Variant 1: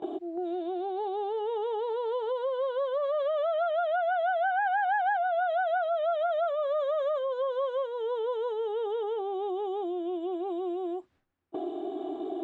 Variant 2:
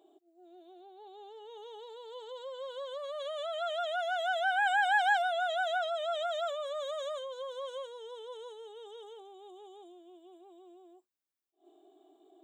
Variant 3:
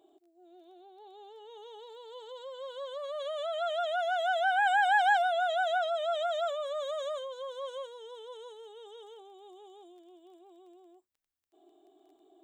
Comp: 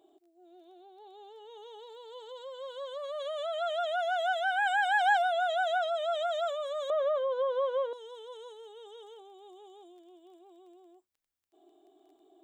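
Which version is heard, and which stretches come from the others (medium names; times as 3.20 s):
3
4.33–5.01 s: from 2
6.90–7.93 s: from 1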